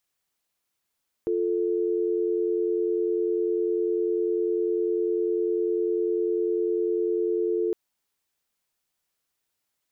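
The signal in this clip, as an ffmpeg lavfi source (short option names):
-f lavfi -i "aevalsrc='0.0562*(sin(2*PI*350*t)+sin(2*PI*440*t))':d=6.46:s=44100"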